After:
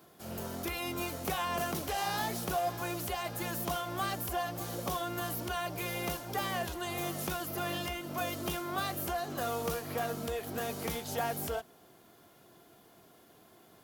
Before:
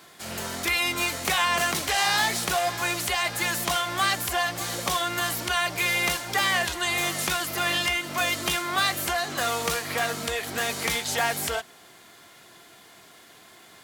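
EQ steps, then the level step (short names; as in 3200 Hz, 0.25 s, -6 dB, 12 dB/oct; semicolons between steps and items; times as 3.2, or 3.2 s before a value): graphic EQ 1000/2000/4000/8000 Hz -4/-12/-8/-11 dB; -2.5 dB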